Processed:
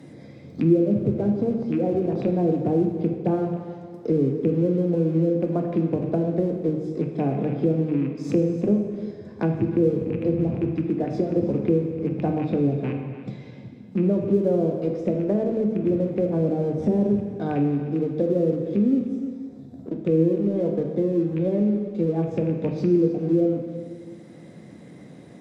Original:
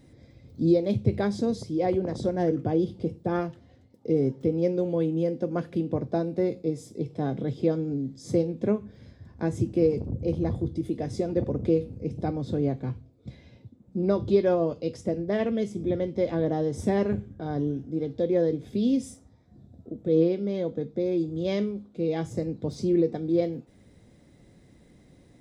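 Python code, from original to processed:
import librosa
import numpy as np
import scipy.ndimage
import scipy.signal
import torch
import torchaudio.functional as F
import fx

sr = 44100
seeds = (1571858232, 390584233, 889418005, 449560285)

p1 = fx.rattle_buzz(x, sr, strikes_db=-29.0, level_db=-30.0)
p2 = scipy.signal.sosfilt(scipy.signal.butter(4, 120.0, 'highpass', fs=sr, output='sos'), p1)
p3 = fx.env_lowpass_down(p2, sr, base_hz=480.0, full_db=-22.5)
p4 = np.sign(p3) * np.maximum(np.abs(p3) - 10.0 ** (-44.5 / 20.0), 0.0)
p5 = p3 + F.gain(torch.from_numpy(p4), -6.0).numpy()
p6 = p5 + 10.0 ** (-17.0 / 20.0) * np.pad(p5, (int(302 * sr / 1000.0), 0))[:len(p5)]
p7 = fx.rev_plate(p6, sr, seeds[0], rt60_s=1.4, hf_ratio=0.9, predelay_ms=0, drr_db=3.5)
y = fx.band_squash(p7, sr, depth_pct=40)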